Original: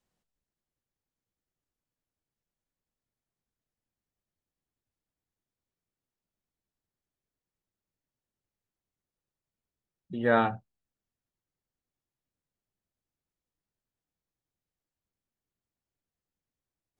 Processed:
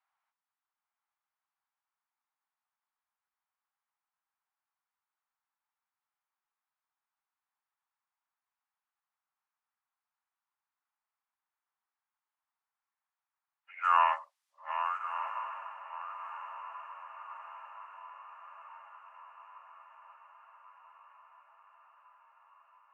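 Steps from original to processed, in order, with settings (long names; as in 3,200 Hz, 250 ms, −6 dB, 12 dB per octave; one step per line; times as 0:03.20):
feedback delay that plays each chunk backwards 427 ms, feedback 45%, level −10.5 dB
Butterworth high-pass 1,100 Hz 48 dB per octave
low-pass that shuts in the quiet parts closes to 1,800 Hz, open at −42 dBFS
in parallel at 0 dB: downward compressor, threshold −42 dBFS, peak gain reduction 16 dB
on the sum: feedback delay with all-pass diffusion 1,024 ms, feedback 60%, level −11 dB
wrong playback speed 45 rpm record played at 33 rpm
level +3.5 dB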